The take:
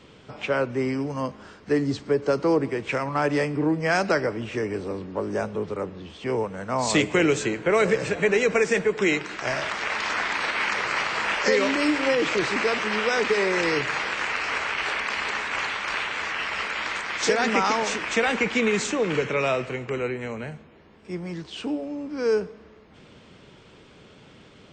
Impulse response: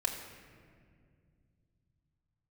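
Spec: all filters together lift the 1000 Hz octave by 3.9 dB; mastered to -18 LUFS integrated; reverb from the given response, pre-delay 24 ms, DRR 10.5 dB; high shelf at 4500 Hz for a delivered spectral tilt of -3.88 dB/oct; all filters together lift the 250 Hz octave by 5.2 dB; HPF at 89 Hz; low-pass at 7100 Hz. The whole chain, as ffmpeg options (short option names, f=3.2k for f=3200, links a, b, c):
-filter_complex "[0:a]highpass=89,lowpass=7.1k,equalizer=f=250:t=o:g=6.5,equalizer=f=1k:t=o:g=5,highshelf=f=4.5k:g=-6,asplit=2[a][b];[1:a]atrim=start_sample=2205,adelay=24[c];[b][c]afir=irnorm=-1:irlink=0,volume=-15dB[d];[a][d]amix=inputs=2:normalize=0,volume=4dB"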